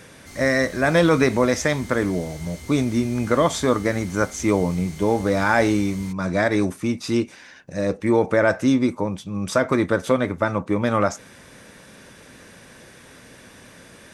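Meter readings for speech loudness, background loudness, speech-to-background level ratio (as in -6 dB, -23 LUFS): -21.5 LUFS, -40.0 LUFS, 18.5 dB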